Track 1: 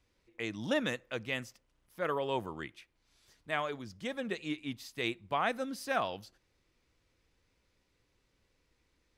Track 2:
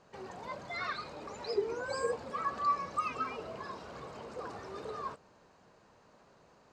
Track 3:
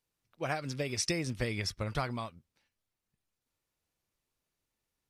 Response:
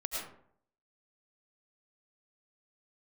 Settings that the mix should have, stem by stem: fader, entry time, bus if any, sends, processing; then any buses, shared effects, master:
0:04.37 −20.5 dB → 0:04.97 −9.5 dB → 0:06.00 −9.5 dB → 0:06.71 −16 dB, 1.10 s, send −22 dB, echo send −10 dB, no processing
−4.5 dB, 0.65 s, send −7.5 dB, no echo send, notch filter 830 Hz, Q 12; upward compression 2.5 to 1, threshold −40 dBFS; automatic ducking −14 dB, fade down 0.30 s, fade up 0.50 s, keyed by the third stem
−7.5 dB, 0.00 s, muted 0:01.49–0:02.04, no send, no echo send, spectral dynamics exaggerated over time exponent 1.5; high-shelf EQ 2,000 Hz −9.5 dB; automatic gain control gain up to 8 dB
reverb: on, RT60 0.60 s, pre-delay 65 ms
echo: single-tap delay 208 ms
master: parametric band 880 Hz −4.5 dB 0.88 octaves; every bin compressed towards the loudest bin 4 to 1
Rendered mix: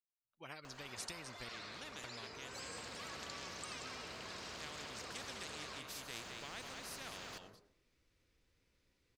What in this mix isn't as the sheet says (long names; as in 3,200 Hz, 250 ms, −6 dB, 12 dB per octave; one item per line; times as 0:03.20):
stem 2: send −7.5 dB → −13.5 dB
stem 3 −7.5 dB → −14.0 dB